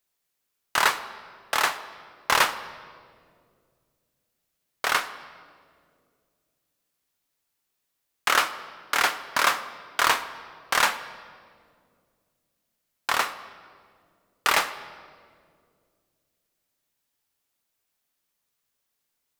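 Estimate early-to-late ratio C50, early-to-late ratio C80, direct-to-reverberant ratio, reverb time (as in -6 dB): 13.5 dB, 14.5 dB, 11.0 dB, 2.2 s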